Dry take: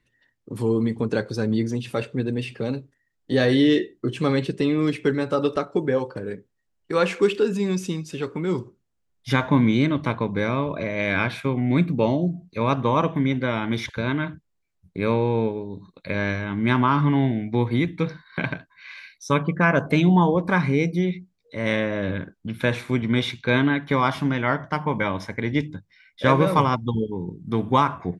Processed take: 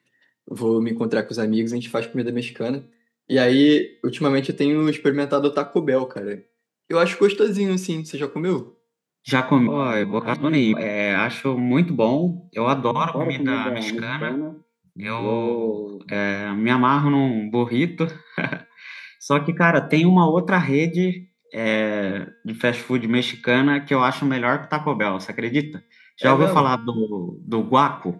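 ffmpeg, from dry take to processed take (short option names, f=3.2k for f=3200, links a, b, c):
-filter_complex "[0:a]asettb=1/sr,asplit=3[a][b][c];[a]atrim=end=12.914[d];[b]atrim=start=12.91:end=16.12,asetpts=PTS-STARTPTS,afade=t=in:d=0.004:c=qsin,afade=t=out:st=3.206:d=0.004:c=qsin,acrossover=split=200|680[e][f][g];[g]adelay=40[h];[f]adelay=230[i];[e][i][h]amix=inputs=3:normalize=0,atrim=end_sample=141561[j];[c]atrim=start=16.116[k];[d][j]acrossfade=d=0.004:c1=hsin:c2=qsin[l];[l][k]acrossfade=d=0.004:c1=qsin:c2=hsin,asplit=3[m][n][o];[m]atrim=end=9.672[p];[n]atrim=start=9.668:end=10.732,asetpts=PTS-STARTPTS,areverse[q];[o]atrim=start=10.728[r];[p][q]acrossfade=d=0.004:c1=hsin:c2=hsin[s];[s][r]acrossfade=d=0.004:c1=hsin:c2=hsin,highpass=f=150:w=0.5412,highpass=f=150:w=1.3066,bandreject=f=232.5:t=h:w=4,bandreject=f=465:t=h:w=4,bandreject=f=697.5:t=h:w=4,bandreject=f=930:t=h:w=4,bandreject=f=1.1625k:t=h:w=4,bandreject=f=1.395k:t=h:w=4,bandreject=f=1.6275k:t=h:w=4,bandreject=f=1.86k:t=h:w=4,bandreject=f=2.0925k:t=h:w=4,bandreject=f=2.325k:t=h:w=4,bandreject=f=2.5575k:t=h:w=4,bandreject=f=2.79k:t=h:w=4,bandreject=f=3.0225k:t=h:w=4,bandreject=f=3.255k:t=h:w=4,bandreject=f=3.4875k:t=h:w=4,bandreject=f=3.72k:t=h:w=4,bandreject=f=3.9525k:t=h:w=4,bandreject=f=4.185k:t=h:w=4,bandreject=f=4.4175k:t=h:w=4,bandreject=f=4.65k:t=h:w=4,bandreject=f=4.8825k:t=h:w=4,bandreject=f=5.115k:t=h:w=4,volume=3dB"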